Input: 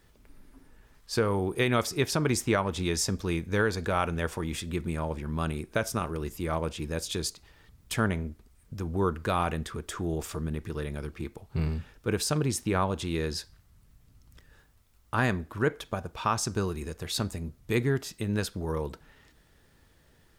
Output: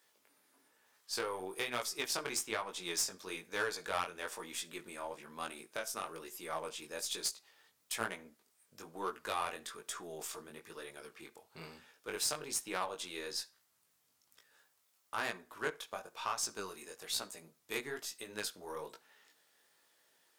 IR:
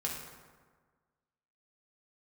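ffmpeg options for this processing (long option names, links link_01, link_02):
-filter_complex "[0:a]highpass=730,equalizer=frequency=1500:width_type=o:width=2.9:gain=-6,alimiter=limit=-22.5dB:level=0:latency=1:release=322,aeval=exprs='0.075*(cos(1*acos(clip(val(0)/0.075,-1,1)))-cos(1*PI/2))+0.00841*(cos(2*acos(clip(val(0)/0.075,-1,1)))-cos(2*PI/2))+0.0119*(cos(3*acos(clip(val(0)/0.075,-1,1)))-cos(3*PI/2))+0.00376*(cos(5*acos(clip(val(0)/0.075,-1,1)))-cos(5*PI/2))+0.00168*(cos(8*acos(clip(val(0)/0.075,-1,1)))-cos(8*PI/2))':channel_layout=same,flanger=delay=16:depth=6.1:speed=1.1,asplit=2[link_01][link_02];[1:a]atrim=start_sample=2205,atrim=end_sample=3969[link_03];[link_02][link_03]afir=irnorm=-1:irlink=0,volume=-18dB[link_04];[link_01][link_04]amix=inputs=2:normalize=0,volume=4dB"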